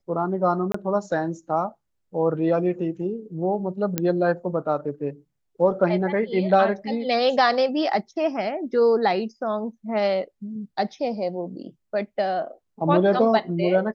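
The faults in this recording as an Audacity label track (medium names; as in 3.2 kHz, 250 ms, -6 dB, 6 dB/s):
0.720000	0.740000	dropout 24 ms
3.980000	3.980000	pop -8 dBFS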